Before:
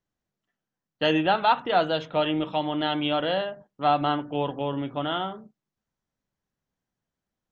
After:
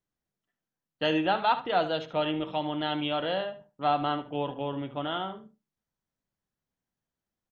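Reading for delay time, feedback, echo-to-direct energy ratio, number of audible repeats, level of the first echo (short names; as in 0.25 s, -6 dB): 73 ms, 15%, -13.5 dB, 2, -13.5 dB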